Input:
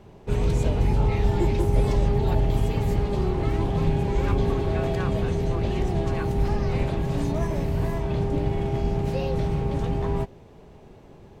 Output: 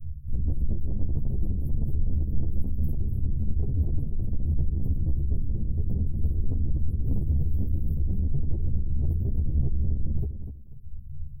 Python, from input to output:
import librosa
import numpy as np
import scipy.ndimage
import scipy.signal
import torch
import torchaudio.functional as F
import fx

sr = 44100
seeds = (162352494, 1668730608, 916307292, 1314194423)

p1 = fx.octave_divider(x, sr, octaves=1, level_db=3.0)
p2 = scipy.signal.sosfilt(scipy.signal.cheby2(4, 60, [430.0, 5300.0], 'bandstop', fs=sr, output='sos'), p1)
p3 = fx.hum_notches(p2, sr, base_hz=60, count=3)
p4 = fx.dereverb_blind(p3, sr, rt60_s=1.2)
p5 = fx.low_shelf(p4, sr, hz=63.0, db=10.0)
p6 = fx.over_compress(p5, sr, threshold_db=-25.0, ratio=-0.5)
p7 = p5 + F.gain(torch.from_numpy(p6), -1.5).numpy()
p8 = 10.0 ** (-19.5 / 20.0) * np.tanh(p7 / 10.0 ** (-19.5 / 20.0))
p9 = fx.doubler(p8, sr, ms=15.0, db=-10.0)
p10 = fx.echo_feedback(p9, sr, ms=246, feedback_pct=26, wet_db=-9)
y = fx.ensemble(p10, sr)